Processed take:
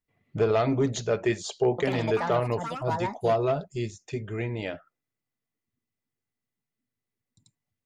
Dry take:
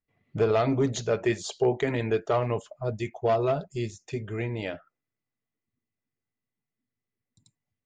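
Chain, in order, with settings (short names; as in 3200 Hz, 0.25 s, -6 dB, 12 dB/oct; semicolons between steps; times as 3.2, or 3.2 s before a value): 1.7–3.88 echoes that change speed 84 ms, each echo +6 st, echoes 2, each echo -6 dB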